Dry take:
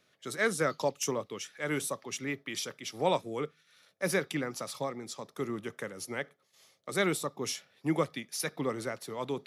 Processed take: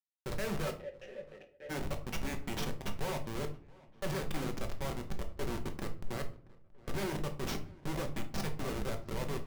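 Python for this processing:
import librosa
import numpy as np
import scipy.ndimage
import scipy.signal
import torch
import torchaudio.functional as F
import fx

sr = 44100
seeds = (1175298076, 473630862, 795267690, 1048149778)

y = scipy.signal.sosfilt(scipy.signal.butter(2, 5600.0, 'lowpass', fs=sr, output='sos'), x)
y = fx.schmitt(y, sr, flips_db=-35.0)
y = fx.vowel_filter(y, sr, vowel='e', at=(0.7, 1.69), fade=0.02)
y = fx.echo_filtered(y, sr, ms=677, feedback_pct=56, hz=2900.0, wet_db=-23)
y = fx.room_shoebox(y, sr, seeds[0], volume_m3=310.0, walls='furnished', distance_m=1.1)
y = y * 10.0 ** (-2.5 / 20.0)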